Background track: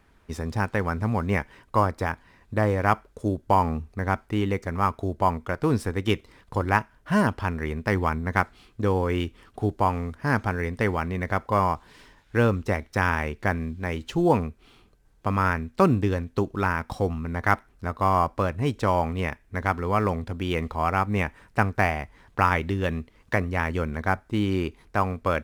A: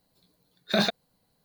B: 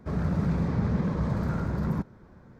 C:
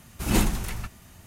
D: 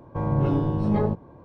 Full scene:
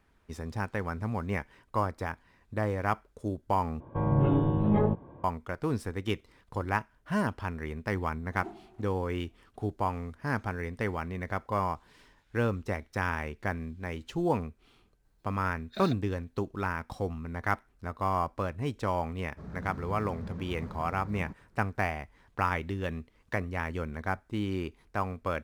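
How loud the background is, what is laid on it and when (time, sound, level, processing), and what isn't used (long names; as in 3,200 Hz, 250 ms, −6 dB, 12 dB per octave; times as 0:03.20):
background track −7.5 dB
0:03.80: overwrite with D −2 dB + downsampling to 8,000 Hz
0:08.10: mix in C −10 dB + pair of resonant band-passes 510 Hz, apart 0.91 octaves
0:15.03: mix in A −16 dB
0:19.31: mix in B −14.5 dB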